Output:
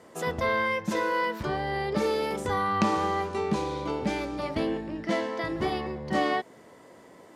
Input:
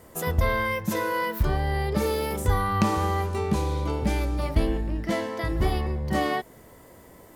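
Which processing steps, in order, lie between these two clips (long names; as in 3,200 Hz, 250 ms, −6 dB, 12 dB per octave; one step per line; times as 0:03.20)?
band-pass filter 190–6,300 Hz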